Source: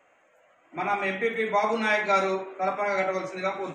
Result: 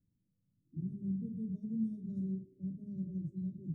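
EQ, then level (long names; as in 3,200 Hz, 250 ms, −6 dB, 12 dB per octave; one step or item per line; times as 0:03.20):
inverse Chebyshev band-stop filter 750–2,700 Hz, stop band 80 dB
high-frequency loss of the air 470 metres
+9.0 dB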